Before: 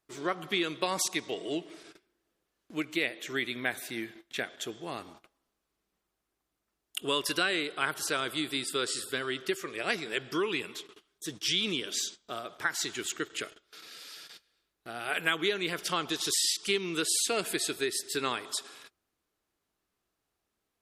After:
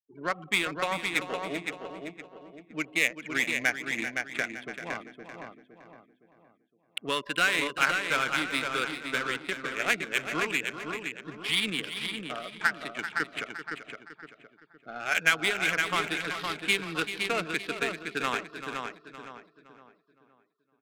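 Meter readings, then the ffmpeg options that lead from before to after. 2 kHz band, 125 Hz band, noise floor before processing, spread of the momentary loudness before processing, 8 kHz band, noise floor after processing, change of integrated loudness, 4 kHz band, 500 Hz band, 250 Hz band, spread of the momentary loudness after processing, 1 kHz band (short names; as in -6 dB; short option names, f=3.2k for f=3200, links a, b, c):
+6.5 dB, +2.0 dB, -84 dBFS, 14 LU, -6.5 dB, -69 dBFS, +2.0 dB, -0.5 dB, -1.0 dB, -0.5 dB, 17 LU, +4.0 dB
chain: -filter_complex "[0:a]afftfilt=real='re*gte(hypot(re,im),0.0126)':imag='im*gte(hypot(re,im),0.0126)':win_size=1024:overlap=0.75,highpass=f=130:w=0.5412,highpass=f=130:w=1.3066,equalizer=f=370:t=q:w=4:g=-10,equalizer=f=1.5k:t=q:w=4:g=4,equalizer=f=2.3k:t=q:w=4:g=8,lowpass=f=4.4k:w=0.5412,lowpass=f=4.4k:w=1.3066,asplit=2[a][b];[b]aecho=0:1:514|1028|1542|2056|2570:0.562|0.231|0.0945|0.0388|0.0159[c];[a][c]amix=inputs=2:normalize=0,adynamicsmooth=sensitivity=3:basefreq=830,asplit=2[d][e];[e]aecho=0:1:388:0.282[f];[d][f]amix=inputs=2:normalize=0,volume=1.5dB"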